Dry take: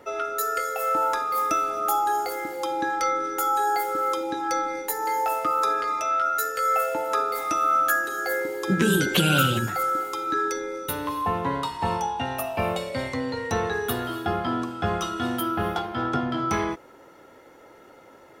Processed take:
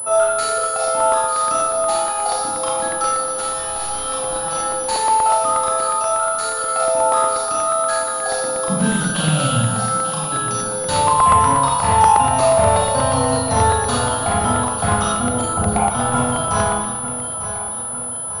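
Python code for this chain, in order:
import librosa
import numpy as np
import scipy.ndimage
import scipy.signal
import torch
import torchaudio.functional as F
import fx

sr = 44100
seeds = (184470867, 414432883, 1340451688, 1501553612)

y = fx.envelope_sharpen(x, sr, power=3.0, at=(15.08, 15.9))
y = fx.rider(y, sr, range_db=10, speed_s=0.5)
y = fx.clip_hard(y, sr, threshold_db=-27.5, at=(3.29, 4.53))
y = fx.fixed_phaser(y, sr, hz=880.0, stages=4)
y = fx.fold_sine(y, sr, drive_db=4, ceiling_db=-12.5)
y = fx.echo_feedback(y, sr, ms=897, feedback_pct=51, wet_db=-12.0)
y = fx.rev_schroeder(y, sr, rt60_s=0.88, comb_ms=26, drr_db=-5.0)
y = fx.buffer_crackle(y, sr, first_s=0.52, period_s=0.12, block=64, kind='repeat')
y = fx.pwm(y, sr, carrier_hz=10000.0)
y = F.gain(torch.from_numpy(y), -1.0).numpy()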